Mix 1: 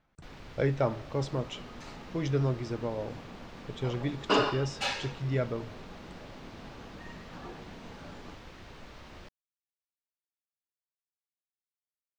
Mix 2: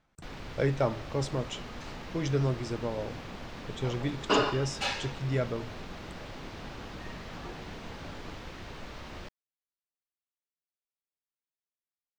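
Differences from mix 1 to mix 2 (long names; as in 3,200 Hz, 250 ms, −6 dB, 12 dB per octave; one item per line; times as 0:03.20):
speech: remove high-frequency loss of the air 86 metres
first sound +5.5 dB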